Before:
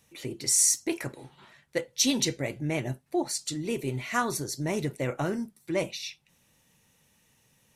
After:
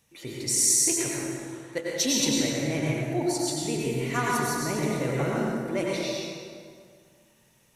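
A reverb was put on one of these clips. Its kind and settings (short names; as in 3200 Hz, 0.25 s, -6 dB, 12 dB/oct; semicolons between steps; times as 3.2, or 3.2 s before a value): plate-style reverb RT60 2.1 s, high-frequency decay 0.65×, pre-delay 80 ms, DRR -4.5 dB; gain -2.5 dB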